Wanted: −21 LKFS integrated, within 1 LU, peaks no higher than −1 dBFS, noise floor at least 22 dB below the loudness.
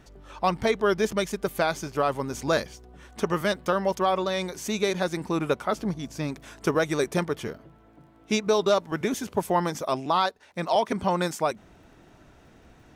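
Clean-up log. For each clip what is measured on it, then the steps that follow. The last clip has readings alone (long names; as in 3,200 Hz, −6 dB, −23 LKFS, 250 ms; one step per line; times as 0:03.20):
crackle rate 25 per second; integrated loudness −27.0 LKFS; sample peak −12.5 dBFS; target loudness −21.0 LKFS
→ click removal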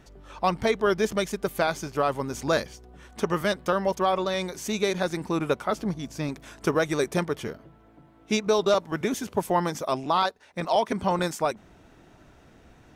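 crackle rate 0.077 per second; integrated loudness −27.0 LKFS; sample peak −10.5 dBFS; target loudness −21.0 LKFS
→ level +6 dB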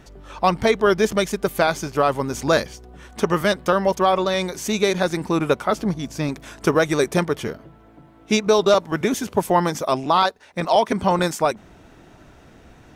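integrated loudness −21.0 LKFS; sample peak −4.5 dBFS; background noise floor −49 dBFS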